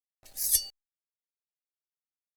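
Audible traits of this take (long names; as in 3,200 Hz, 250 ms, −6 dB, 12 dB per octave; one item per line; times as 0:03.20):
a quantiser's noise floor 10 bits, dither none
Opus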